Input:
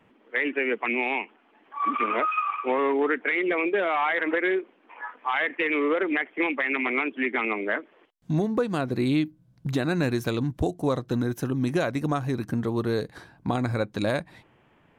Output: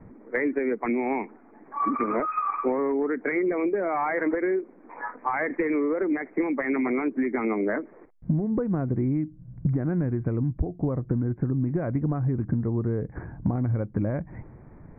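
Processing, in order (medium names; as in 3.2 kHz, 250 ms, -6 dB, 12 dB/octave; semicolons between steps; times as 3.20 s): steep low-pass 2.3 kHz 96 dB/octave; tilt EQ -4.5 dB/octave; compression 12:1, threshold -26 dBFS, peak gain reduction 19.5 dB; trim +4 dB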